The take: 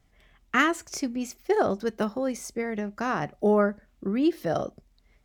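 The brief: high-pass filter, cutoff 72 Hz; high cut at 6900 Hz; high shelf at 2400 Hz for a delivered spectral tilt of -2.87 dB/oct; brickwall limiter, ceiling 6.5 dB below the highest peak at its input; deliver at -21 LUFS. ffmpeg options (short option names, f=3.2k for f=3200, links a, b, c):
-af "highpass=72,lowpass=6.9k,highshelf=f=2.4k:g=-4.5,volume=8.5dB,alimiter=limit=-8.5dB:level=0:latency=1"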